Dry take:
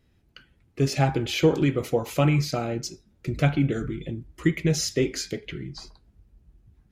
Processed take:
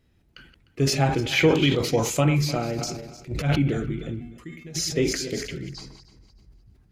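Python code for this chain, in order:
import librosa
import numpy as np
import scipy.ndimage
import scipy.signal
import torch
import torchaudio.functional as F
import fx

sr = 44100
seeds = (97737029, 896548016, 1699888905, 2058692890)

y = fx.reverse_delay_fb(x, sr, ms=151, feedback_pct=48, wet_db=-12)
y = fx.peak_eq(y, sr, hz=fx.line((1.31, 1700.0), (2.2, 8300.0)), db=14.0, octaves=0.71, at=(1.31, 2.2), fade=0.02)
y = fx.transient(y, sr, attack_db=-12, sustain_db=9, at=(2.77, 3.55), fade=0.02)
y = fx.comb_fb(y, sr, f0_hz=240.0, decay_s=0.61, harmonics='odd', damping=0.0, mix_pct=90, at=(4.19, 4.74), fade=0.02)
y = fx.sustainer(y, sr, db_per_s=71.0)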